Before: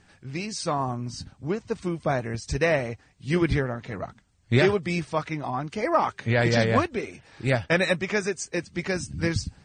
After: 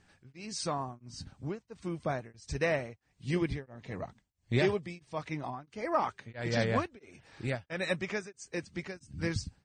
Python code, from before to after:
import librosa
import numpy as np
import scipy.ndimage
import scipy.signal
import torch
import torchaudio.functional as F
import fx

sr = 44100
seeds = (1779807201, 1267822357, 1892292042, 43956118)

y = fx.recorder_agc(x, sr, target_db=-18.5, rise_db_per_s=7.1, max_gain_db=30)
y = fx.peak_eq(y, sr, hz=1400.0, db=-8.0, octaves=0.33, at=(3.27, 5.35))
y = y * np.abs(np.cos(np.pi * 1.5 * np.arange(len(y)) / sr))
y = F.gain(torch.from_numpy(y), -7.0).numpy()